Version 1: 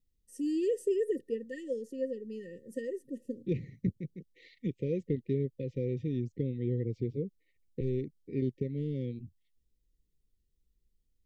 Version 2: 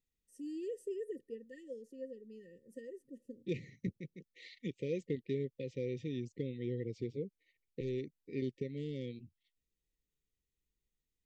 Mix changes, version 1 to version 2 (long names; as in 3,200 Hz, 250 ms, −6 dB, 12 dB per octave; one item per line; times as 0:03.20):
first voice −11.0 dB
second voice: add spectral tilt +3 dB per octave